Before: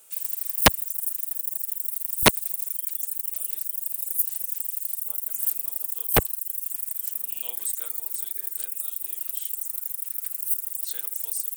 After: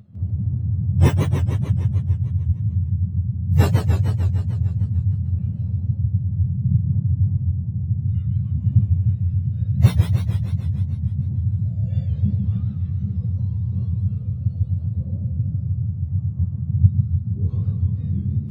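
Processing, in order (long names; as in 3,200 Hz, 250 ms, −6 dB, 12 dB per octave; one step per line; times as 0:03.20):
frequency axis turned over on the octave scale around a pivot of 1,300 Hz
time stretch by phase vocoder 1.6×
feedback echo with a swinging delay time 150 ms, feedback 66%, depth 203 cents, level −5 dB
level −4.5 dB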